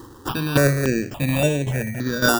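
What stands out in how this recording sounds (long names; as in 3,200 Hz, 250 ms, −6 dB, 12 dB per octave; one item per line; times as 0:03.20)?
aliases and images of a low sample rate 2,100 Hz, jitter 0%
tremolo saw down 1.8 Hz, depth 75%
notches that jump at a steady rate 3.5 Hz 640–4,800 Hz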